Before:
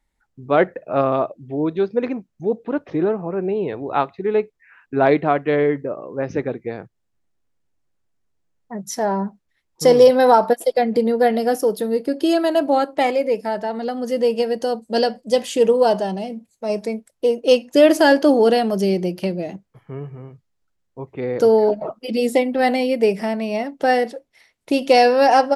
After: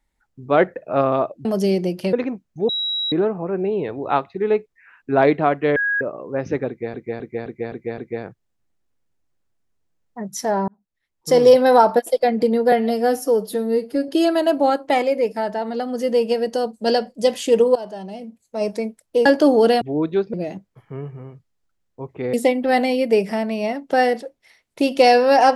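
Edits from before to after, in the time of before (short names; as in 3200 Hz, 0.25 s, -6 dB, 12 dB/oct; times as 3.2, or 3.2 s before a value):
1.45–1.97 swap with 18.64–19.32
2.53–2.96 bleep 3870 Hz -20.5 dBFS
5.6–5.85 bleep 1650 Hz -17.5 dBFS
6.52–6.78 loop, 6 plays
9.22–10.07 fade in
11.26–12.17 stretch 1.5×
15.84–16.74 fade in, from -18 dB
17.34–18.08 cut
21.32–22.24 cut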